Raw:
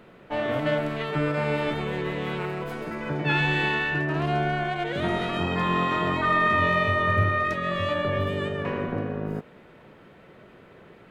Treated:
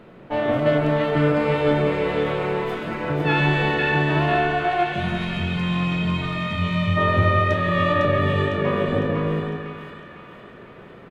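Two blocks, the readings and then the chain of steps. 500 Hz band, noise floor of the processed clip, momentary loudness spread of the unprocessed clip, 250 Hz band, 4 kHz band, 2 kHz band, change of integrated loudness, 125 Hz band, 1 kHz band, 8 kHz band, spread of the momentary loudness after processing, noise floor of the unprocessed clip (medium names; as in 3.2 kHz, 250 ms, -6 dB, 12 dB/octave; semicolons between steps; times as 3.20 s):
+6.0 dB, -43 dBFS, 9 LU, +6.0 dB, +3.0 dB, +1.5 dB, +4.0 dB, +6.5 dB, +2.5 dB, no reading, 8 LU, -51 dBFS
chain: treble shelf 4.7 kHz -8.5 dB; time-frequency box 4.84–6.97 s, 220–2000 Hz -13 dB; peaking EQ 1.8 kHz -2.5 dB 1.8 oct; doubling 34 ms -13.5 dB; on a send: two-band feedback delay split 1.1 kHz, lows 165 ms, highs 504 ms, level -3.5 dB; on the sum: trim +5 dB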